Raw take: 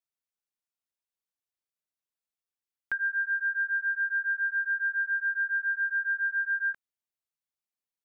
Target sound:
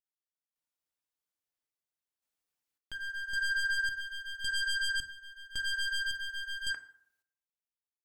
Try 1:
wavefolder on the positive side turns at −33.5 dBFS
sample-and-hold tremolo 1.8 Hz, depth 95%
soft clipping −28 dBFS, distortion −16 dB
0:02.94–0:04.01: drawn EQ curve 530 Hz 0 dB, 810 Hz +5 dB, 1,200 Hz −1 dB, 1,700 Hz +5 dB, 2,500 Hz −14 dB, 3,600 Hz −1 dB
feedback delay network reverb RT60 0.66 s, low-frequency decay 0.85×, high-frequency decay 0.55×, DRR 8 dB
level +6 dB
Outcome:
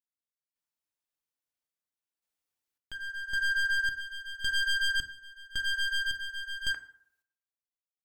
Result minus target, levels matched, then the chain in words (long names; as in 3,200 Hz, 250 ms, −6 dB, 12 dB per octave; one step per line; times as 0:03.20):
soft clipping: distortion −8 dB
wavefolder on the positive side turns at −33.5 dBFS
sample-and-hold tremolo 1.8 Hz, depth 95%
soft clipping −35 dBFS, distortion −8 dB
0:02.94–0:04.01: drawn EQ curve 530 Hz 0 dB, 810 Hz +5 dB, 1,200 Hz −1 dB, 1,700 Hz +5 dB, 2,500 Hz −14 dB, 3,600 Hz −1 dB
feedback delay network reverb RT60 0.66 s, low-frequency decay 0.85×, high-frequency decay 0.55×, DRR 8 dB
level +6 dB